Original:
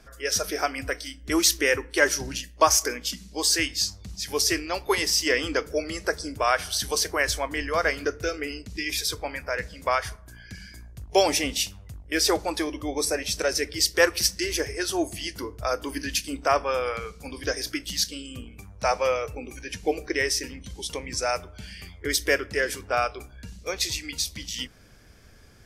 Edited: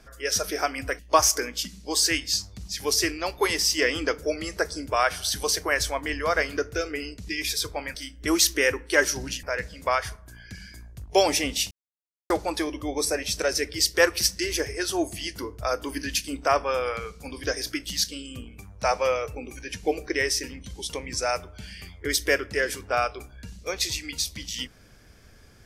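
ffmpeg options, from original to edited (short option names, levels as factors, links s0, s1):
-filter_complex "[0:a]asplit=6[s0][s1][s2][s3][s4][s5];[s0]atrim=end=0.992[s6];[s1]atrim=start=2.468:end=9.432[s7];[s2]atrim=start=0.988:end=2.472[s8];[s3]atrim=start=9.428:end=11.71,asetpts=PTS-STARTPTS,afade=t=out:st=2.278:d=0.004:c=hsin[s9];[s4]atrim=start=11.71:end=12.3,asetpts=PTS-STARTPTS,volume=0[s10];[s5]atrim=start=12.3,asetpts=PTS-STARTPTS,afade=t=in:d=0.004:c=hsin[s11];[s6][s7]acrossfade=d=0.004:c1=hsin:c2=hsin[s12];[s12][s8]acrossfade=d=0.004:c1=hsin:c2=hsin[s13];[s9][s10][s11]concat=n=3:v=0:a=1[s14];[s13][s14]acrossfade=d=0.004:c1=hsin:c2=hsin"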